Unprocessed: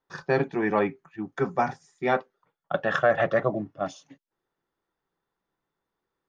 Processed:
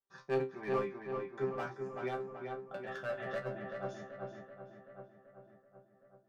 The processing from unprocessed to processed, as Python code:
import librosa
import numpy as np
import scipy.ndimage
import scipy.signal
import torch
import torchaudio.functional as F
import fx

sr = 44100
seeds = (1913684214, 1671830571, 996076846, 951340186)

y = fx.peak_eq(x, sr, hz=780.0, db=-8.0, octaves=1.1, at=(2.77, 3.31))
y = np.clip(y, -10.0 ** (-17.5 / 20.0), 10.0 ** (-17.5 / 20.0))
y = fx.resonator_bank(y, sr, root=48, chord='fifth', decay_s=0.22)
y = fx.echo_filtered(y, sr, ms=383, feedback_pct=67, hz=2900.0, wet_db=-4.5)
y = fx.am_noise(y, sr, seeds[0], hz=5.7, depth_pct=60)